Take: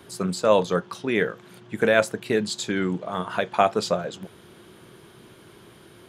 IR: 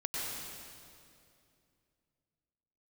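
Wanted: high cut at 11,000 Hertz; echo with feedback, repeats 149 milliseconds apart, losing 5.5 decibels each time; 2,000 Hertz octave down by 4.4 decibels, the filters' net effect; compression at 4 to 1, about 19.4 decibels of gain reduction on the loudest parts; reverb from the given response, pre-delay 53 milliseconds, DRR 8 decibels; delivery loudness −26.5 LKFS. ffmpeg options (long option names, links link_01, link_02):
-filter_complex "[0:a]lowpass=11000,equalizer=frequency=2000:width_type=o:gain=-6,acompressor=threshold=-38dB:ratio=4,aecho=1:1:149|298|447|596|745|894|1043:0.531|0.281|0.149|0.079|0.0419|0.0222|0.0118,asplit=2[link_01][link_02];[1:a]atrim=start_sample=2205,adelay=53[link_03];[link_02][link_03]afir=irnorm=-1:irlink=0,volume=-12.5dB[link_04];[link_01][link_04]amix=inputs=2:normalize=0,volume=13dB"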